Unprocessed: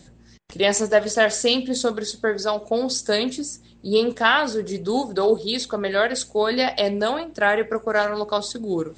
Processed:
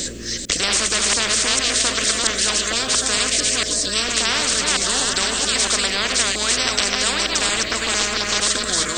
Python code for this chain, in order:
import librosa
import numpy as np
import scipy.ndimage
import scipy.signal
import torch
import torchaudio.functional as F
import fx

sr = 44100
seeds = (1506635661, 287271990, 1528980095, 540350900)

p1 = fx.reverse_delay(x, sr, ms=227, wet_db=-5)
p2 = fx.high_shelf(p1, sr, hz=4000.0, db=10.5)
p3 = fx.fixed_phaser(p2, sr, hz=350.0, stages=4)
p4 = p3 + fx.echo_stepped(p3, sr, ms=155, hz=170.0, octaves=0.7, feedback_pct=70, wet_db=-10, dry=0)
p5 = fx.spectral_comp(p4, sr, ratio=10.0)
y = F.gain(torch.from_numpy(p5), 1.0).numpy()